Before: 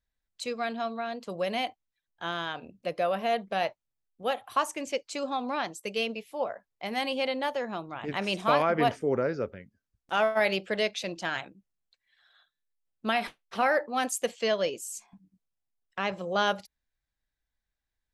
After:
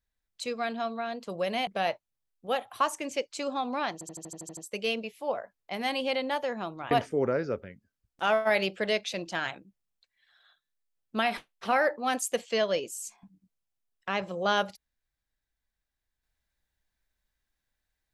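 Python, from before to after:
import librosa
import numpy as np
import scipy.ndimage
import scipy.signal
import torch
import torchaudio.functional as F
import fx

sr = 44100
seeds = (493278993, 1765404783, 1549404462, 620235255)

y = fx.edit(x, sr, fx.cut(start_s=1.67, length_s=1.76),
    fx.stutter(start_s=5.69, slice_s=0.08, count=9),
    fx.cut(start_s=8.03, length_s=0.78), tone=tone)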